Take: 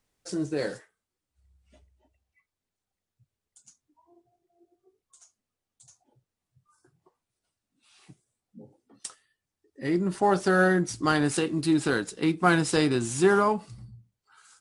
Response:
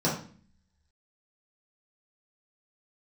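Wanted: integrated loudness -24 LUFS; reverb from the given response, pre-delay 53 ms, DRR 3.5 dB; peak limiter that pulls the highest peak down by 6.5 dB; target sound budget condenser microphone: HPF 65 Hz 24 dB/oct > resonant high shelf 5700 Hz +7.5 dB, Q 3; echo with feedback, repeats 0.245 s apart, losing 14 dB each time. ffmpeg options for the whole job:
-filter_complex "[0:a]alimiter=limit=-14.5dB:level=0:latency=1,aecho=1:1:245|490:0.2|0.0399,asplit=2[a][b];[1:a]atrim=start_sample=2205,adelay=53[c];[b][c]afir=irnorm=-1:irlink=0,volume=-15dB[d];[a][d]amix=inputs=2:normalize=0,highpass=f=65:w=0.5412,highpass=f=65:w=1.3066,highshelf=f=5.7k:t=q:w=3:g=7.5,volume=-3dB"

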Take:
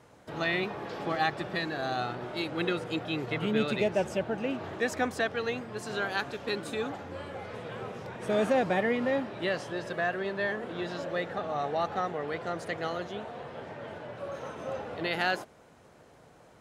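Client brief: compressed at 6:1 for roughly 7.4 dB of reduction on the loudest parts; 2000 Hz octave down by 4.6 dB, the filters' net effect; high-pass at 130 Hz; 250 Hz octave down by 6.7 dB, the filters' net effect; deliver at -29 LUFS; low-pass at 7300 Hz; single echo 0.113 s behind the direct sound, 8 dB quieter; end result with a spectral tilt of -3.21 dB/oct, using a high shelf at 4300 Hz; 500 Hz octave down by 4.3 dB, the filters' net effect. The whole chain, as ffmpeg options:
-af "highpass=130,lowpass=7.3k,equalizer=f=250:t=o:g=-7.5,equalizer=f=500:t=o:g=-3,equalizer=f=2k:t=o:g=-4,highshelf=f=4.3k:g=-7.5,acompressor=threshold=-34dB:ratio=6,aecho=1:1:113:0.398,volume=10.5dB"

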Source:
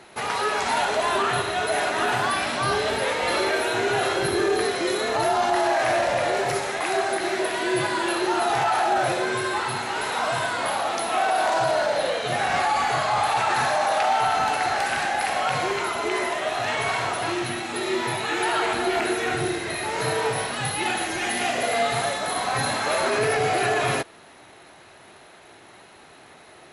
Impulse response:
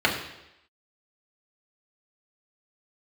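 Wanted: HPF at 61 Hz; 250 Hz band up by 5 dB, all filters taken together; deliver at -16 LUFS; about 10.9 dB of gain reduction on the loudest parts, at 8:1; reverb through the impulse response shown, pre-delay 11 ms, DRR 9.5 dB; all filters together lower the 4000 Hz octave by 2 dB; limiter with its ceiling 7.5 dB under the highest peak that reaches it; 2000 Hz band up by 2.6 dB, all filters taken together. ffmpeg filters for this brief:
-filter_complex "[0:a]highpass=61,equalizer=f=250:t=o:g=8,equalizer=f=2k:t=o:g=4,equalizer=f=4k:t=o:g=-4,acompressor=threshold=-28dB:ratio=8,alimiter=level_in=2dB:limit=-24dB:level=0:latency=1,volume=-2dB,asplit=2[a][b];[1:a]atrim=start_sample=2205,adelay=11[c];[b][c]afir=irnorm=-1:irlink=0,volume=-26.5dB[d];[a][d]amix=inputs=2:normalize=0,volume=17.5dB"

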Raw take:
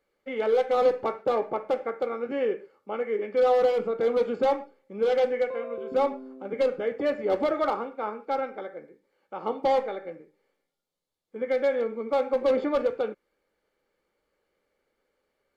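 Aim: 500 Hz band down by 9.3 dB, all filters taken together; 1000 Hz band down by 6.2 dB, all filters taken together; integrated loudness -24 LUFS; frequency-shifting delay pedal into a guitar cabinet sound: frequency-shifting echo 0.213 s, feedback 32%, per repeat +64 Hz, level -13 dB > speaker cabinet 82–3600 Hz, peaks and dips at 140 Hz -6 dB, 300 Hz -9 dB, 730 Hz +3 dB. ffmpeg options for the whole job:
-filter_complex "[0:a]equalizer=f=500:t=o:g=-8,equalizer=f=1k:t=o:g=-7.5,asplit=4[a][b][c][d];[b]adelay=213,afreqshift=64,volume=-13dB[e];[c]adelay=426,afreqshift=128,volume=-22.9dB[f];[d]adelay=639,afreqshift=192,volume=-32.8dB[g];[a][e][f][g]amix=inputs=4:normalize=0,highpass=82,equalizer=f=140:t=q:w=4:g=-6,equalizer=f=300:t=q:w=4:g=-9,equalizer=f=730:t=q:w=4:g=3,lowpass=f=3.6k:w=0.5412,lowpass=f=3.6k:w=1.3066,volume=11dB"

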